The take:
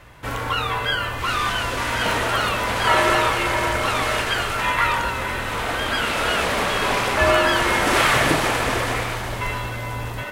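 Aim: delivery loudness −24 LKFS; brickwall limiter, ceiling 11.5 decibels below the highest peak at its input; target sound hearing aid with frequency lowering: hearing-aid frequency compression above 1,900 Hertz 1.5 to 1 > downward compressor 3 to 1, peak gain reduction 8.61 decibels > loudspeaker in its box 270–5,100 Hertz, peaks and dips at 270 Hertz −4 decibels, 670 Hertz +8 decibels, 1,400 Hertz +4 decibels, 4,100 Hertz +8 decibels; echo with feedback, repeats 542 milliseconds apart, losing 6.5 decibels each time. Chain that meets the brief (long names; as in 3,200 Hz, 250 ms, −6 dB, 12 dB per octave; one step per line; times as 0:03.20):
brickwall limiter −16 dBFS
repeating echo 542 ms, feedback 47%, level −6.5 dB
hearing-aid frequency compression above 1,900 Hz 1.5 to 1
downward compressor 3 to 1, threshold −31 dBFS
loudspeaker in its box 270–5,100 Hz, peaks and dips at 270 Hz −4 dB, 670 Hz +8 dB, 1,400 Hz +4 dB, 4,100 Hz +8 dB
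level +5.5 dB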